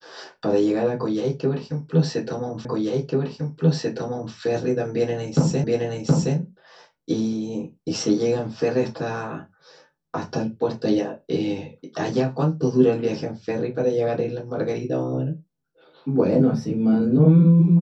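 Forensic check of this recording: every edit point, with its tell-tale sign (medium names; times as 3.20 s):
2.65 s: repeat of the last 1.69 s
5.64 s: repeat of the last 0.72 s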